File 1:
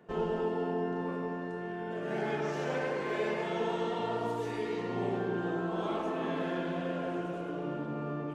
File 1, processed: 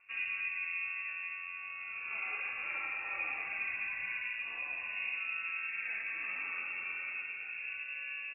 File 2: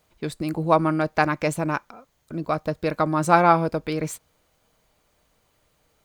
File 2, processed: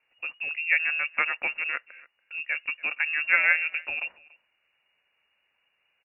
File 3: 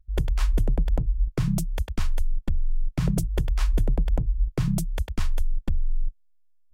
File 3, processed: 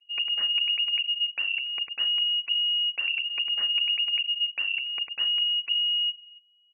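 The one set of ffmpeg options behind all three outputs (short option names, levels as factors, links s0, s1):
-filter_complex "[0:a]lowpass=f=2500:t=q:w=0.5098,lowpass=f=2500:t=q:w=0.6013,lowpass=f=2500:t=q:w=0.9,lowpass=f=2500:t=q:w=2.563,afreqshift=-2900,asplit=2[s0][s1];[s1]adelay=285.7,volume=0.0794,highshelf=f=4000:g=-6.43[s2];[s0][s2]amix=inputs=2:normalize=0,volume=0.531"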